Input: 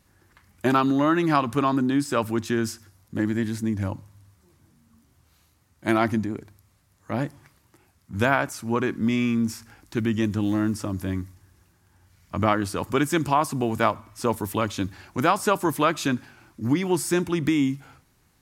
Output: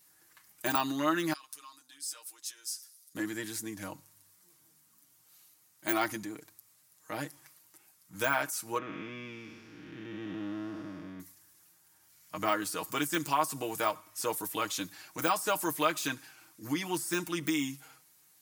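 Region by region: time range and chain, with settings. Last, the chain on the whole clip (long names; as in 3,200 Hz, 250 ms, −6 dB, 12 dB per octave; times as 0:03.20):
0:01.33–0:03.15: downward compressor 2 to 1, threshold −40 dBFS + resonant band-pass 7,900 Hz, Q 0.65 + comb filter 6.6 ms, depth 96%
0:08.78–0:11.20: spectrum smeared in time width 483 ms + high-frequency loss of the air 290 metres
whole clip: de-essing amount 75%; RIAA equalisation recording; comb filter 6.4 ms, depth 68%; level −8 dB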